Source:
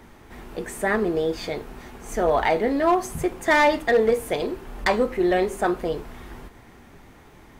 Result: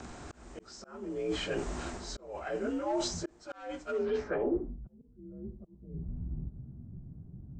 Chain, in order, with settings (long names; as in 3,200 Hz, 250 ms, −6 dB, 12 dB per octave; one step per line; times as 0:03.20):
partials spread apart or drawn together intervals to 86%
reversed playback
downward compressor 6 to 1, threshold −36 dBFS, peak gain reduction 20 dB
reversed playback
volume swells 492 ms
low-pass filter sweep 7,400 Hz → 150 Hz, 0:03.96–0:04.80
level +5 dB